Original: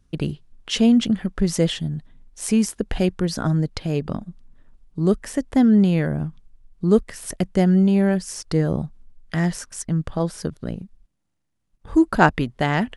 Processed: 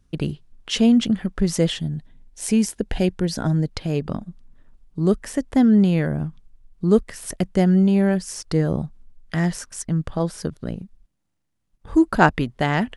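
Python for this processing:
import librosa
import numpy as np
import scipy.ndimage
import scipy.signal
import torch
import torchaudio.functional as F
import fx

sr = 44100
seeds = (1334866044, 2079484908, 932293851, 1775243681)

y = fx.peak_eq(x, sr, hz=1200.0, db=-9.0, octaves=0.25, at=(1.86, 3.7))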